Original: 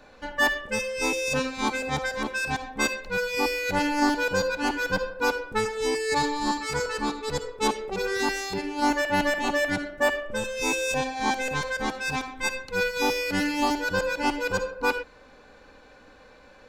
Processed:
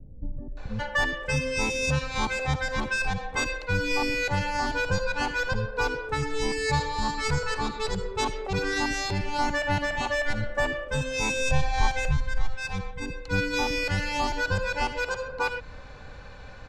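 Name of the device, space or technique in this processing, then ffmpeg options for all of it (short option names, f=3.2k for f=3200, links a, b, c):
jukebox: -filter_complex "[0:a]asplit=3[a][b][c];[a]afade=t=out:st=11.49:d=0.02[d];[b]asubboost=boost=9.5:cutoff=86,afade=t=in:st=11.49:d=0.02,afade=t=out:st=12.54:d=0.02[e];[c]afade=t=in:st=12.54:d=0.02[f];[d][e][f]amix=inputs=3:normalize=0,lowpass=7.6k,lowshelf=f=180:t=q:w=1.5:g=10.5,acompressor=threshold=-30dB:ratio=3,acrossover=split=350[g][h];[h]adelay=570[i];[g][i]amix=inputs=2:normalize=0,volume=5.5dB"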